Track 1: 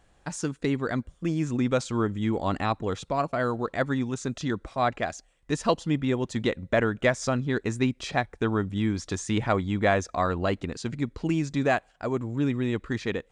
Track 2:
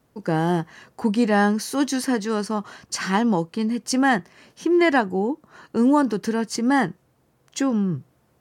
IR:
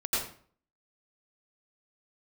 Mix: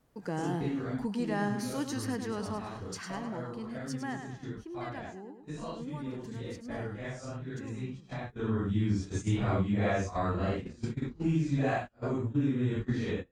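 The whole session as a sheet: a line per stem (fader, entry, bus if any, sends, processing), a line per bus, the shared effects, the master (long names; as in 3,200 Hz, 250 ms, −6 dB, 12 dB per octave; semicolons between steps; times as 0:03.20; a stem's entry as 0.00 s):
+0.5 dB, 0.00 s, no send, no echo send, random phases in long frames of 200 ms; noise gate −31 dBFS, range −21 dB; low-shelf EQ 230 Hz +10.5 dB; automatic ducking −14 dB, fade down 1.95 s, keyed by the second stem
0:02.56 −7 dB → 0:03.18 −15.5 dB → 0:04.34 −15.5 dB → 0:04.72 −22.5 dB, 0.00 s, no send, echo send −8 dB, no processing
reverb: not used
echo: repeating echo 103 ms, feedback 41%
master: downward compressor 1.5 to 1, threshold −41 dBFS, peak gain reduction 9.5 dB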